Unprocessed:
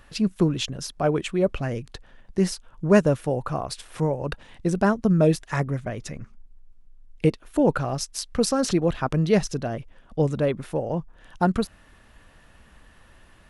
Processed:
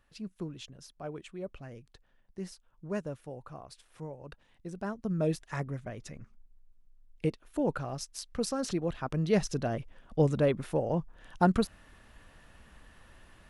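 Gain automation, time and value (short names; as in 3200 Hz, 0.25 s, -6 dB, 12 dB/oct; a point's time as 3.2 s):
4.72 s -18 dB
5.3 s -10 dB
9.03 s -10 dB
9.66 s -3 dB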